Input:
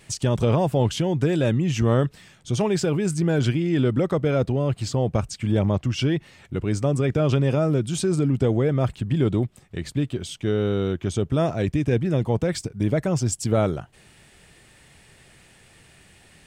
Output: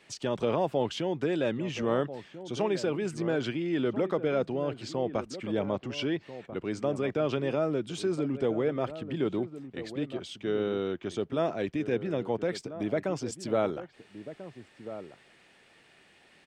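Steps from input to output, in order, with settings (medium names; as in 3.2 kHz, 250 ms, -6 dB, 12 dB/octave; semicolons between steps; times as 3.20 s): three-band isolator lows -18 dB, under 220 Hz, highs -14 dB, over 5.2 kHz; echo from a far wall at 230 m, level -12 dB; trim -4.5 dB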